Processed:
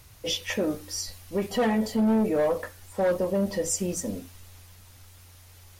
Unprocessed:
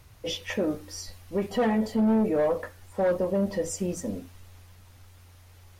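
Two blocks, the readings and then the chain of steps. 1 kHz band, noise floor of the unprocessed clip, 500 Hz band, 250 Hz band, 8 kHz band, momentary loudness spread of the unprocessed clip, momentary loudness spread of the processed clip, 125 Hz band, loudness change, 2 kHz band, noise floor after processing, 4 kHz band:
+0.5 dB, -53 dBFS, 0.0 dB, 0.0 dB, +7.0 dB, 13 LU, 10 LU, 0.0 dB, +0.5 dB, +2.0 dB, -52 dBFS, +4.5 dB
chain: high shelf 3300 Hz +8.5 dB

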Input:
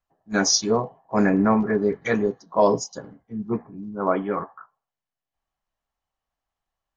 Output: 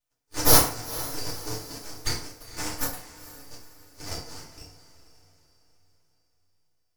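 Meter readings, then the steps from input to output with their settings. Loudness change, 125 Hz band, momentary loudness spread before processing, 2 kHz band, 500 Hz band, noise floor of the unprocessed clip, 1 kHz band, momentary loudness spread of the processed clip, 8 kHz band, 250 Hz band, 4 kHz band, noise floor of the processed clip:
-3.0 dB, -4.0 dB, 15 LU, -6.0 dB, -12.5 dB, under -85 dBFS, -7.0 dB, 25 LU, n/a, -14.5 dB, -1.0 dB, -74 dBFS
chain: minimum comb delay 1.7 ms; steep high-pass 2200 Hz 96 dB/oct; full-wave rectifier; on a send: diffused feedback echo 0.462 s, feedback 42%, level -14.5 dB; on the sum: FDN reverb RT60 0.51 s, low-frequency decay 0.9×, high-frequency decay 0.7×, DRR -5 dB; gain +6 dB

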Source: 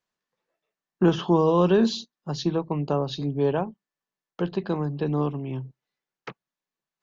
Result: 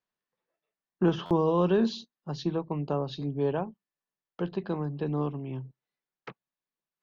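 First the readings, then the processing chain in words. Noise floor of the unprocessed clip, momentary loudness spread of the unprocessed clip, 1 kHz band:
under -85 dBFS, 17 LU, -5.0 dB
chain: air absorption 92 m; stuck buffer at 1.25, samples 512, times 4; gain -4.5 dB

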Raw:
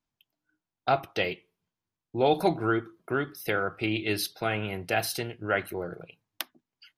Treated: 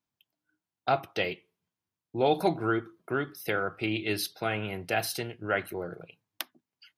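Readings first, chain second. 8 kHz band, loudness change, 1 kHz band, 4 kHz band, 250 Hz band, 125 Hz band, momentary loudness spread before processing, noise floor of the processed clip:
-1.5 dB, -1.5 dB, -1.5 dB, -1.5 dB, -1.5 dB, -2.0 dB, 13 LU, under -85 dBFS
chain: HPF 70 Hz; gain -1.5 dB

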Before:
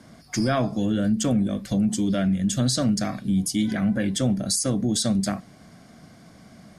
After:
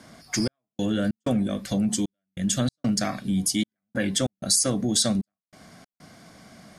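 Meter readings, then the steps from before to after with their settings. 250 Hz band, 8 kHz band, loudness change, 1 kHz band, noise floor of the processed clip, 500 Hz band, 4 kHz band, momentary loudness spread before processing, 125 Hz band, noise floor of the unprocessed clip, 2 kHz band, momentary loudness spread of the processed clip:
-3.5 dB, +2.5 dB, -2.0 dB, -3.5 dB, under -85 dBFS, -2.0 dB, +2.0 dB, 3 LU, -4.5 dB, -50 dBFS, -0.5 dB, 9 LU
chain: low shelf 370 Hz -7.5 dB; step gate "xxx..xx.xx" 95 bpm -60 dB; gain +3.5 dB

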